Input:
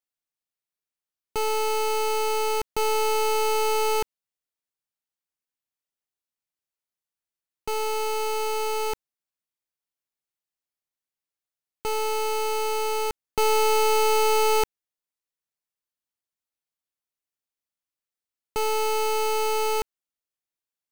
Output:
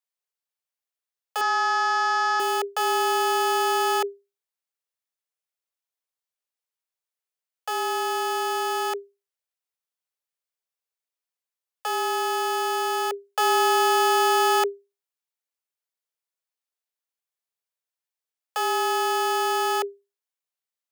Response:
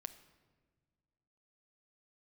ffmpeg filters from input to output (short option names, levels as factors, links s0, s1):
-filter_complex "[0:a]afreqshift=400,asettb=1/sr,asplit=3[s0][s1][s2];[s0]atrim=end=1.414[s3];[s1]atrim=start=1.41:end=2.4,asetpts=PTS-STARTPTS,afade=t=in:d=0.004:c=qsin,afade=t=out:st=0.986:d=0.004:c=qsin,highpass=380,equalizer=f=390:t=q:w=4:g=-8,equalizer=f=1100:t=q:w=4:g=6,equalizer=f=1600:t=q:w=4:g=9,equalizer=f=2800:t=q:w=4:g=-9,equalizer=f=5500:t=q:w=4:g=6,lowpass=f=6000:w=0.5412,lowpass=f=6000:w=1.3066[s4];[s2]atrim=start=2.396[s5];[s3][s4]acrossfade=d=0.004:c1=hsin:c2=qsin[s6];[s6][s5]acrossfade=d=0.004:c1=qsin:c2=hsin"